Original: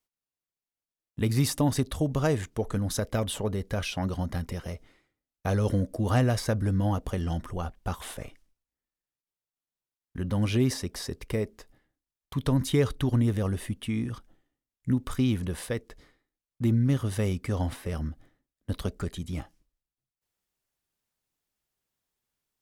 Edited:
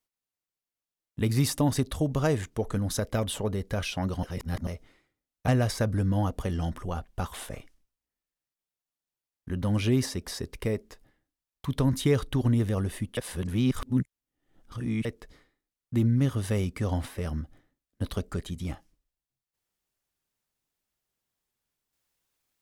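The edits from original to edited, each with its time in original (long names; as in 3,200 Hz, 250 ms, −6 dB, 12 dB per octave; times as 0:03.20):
0:04.23–0:04.67: reverse
0:05.48–0:06.16: remove
0:13.85–0:15.73: reverse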